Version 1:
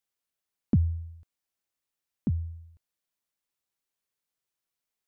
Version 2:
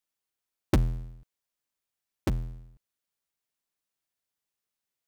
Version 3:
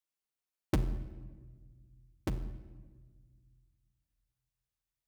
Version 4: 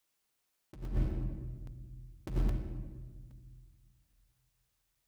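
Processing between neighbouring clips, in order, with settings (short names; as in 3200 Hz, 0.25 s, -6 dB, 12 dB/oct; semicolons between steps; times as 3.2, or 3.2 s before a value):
cycle switcher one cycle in 2, inverted
reverb RT60 1.5 s, pre-delay 6 ms, DRR 10.5 dB; gain -6.5 dB
negative-ratio compressor -38 dBFS, ratio -0.5; crackling interface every 0.82 s, samples 128, zero, from 0.85; gain +7 dB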